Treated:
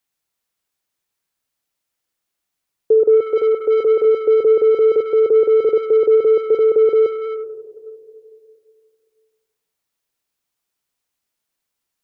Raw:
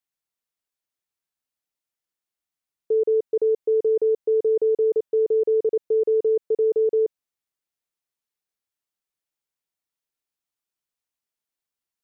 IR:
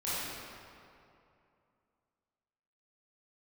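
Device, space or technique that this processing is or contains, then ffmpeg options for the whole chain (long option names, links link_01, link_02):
saturated reverb return: -filter_complex "[0:a]asplit=2[link_01][link_02];[1:a]atrim=start_sample=2205[link_03];[link_02][link_03]afir=irnorm=-1:irlink=0,asoftclip=type=tanh:threshold=-17dB,volume=-13.5dB[link_04];[link_01][link_04]amix=inputs=2:normalize=0,asettb=1/sr,asplit=3[link_05][link_06][link_07];[link_05]atrim=end=3.214[link_08];[link_06]atrim=start=3.21:end=4.05,asetpts=PTS-STARTPTS,afade=type=in:duration=0.004:curve=qsin,afade=type=out:start_time=0.836:duration=0.004:curve=qsin,tiltshelf=frequency=660:gain=-4.5[link_09];[link_07]atrim=start=4.046[link_10];[link_08][link_09]acrossfade=duration=0.004:curve1=hsin:curve2=qsin[link_11];[link_11][link_10]acrossfade=duration=0.004:curve1=qsin:curve2=hsin,volume=8dB"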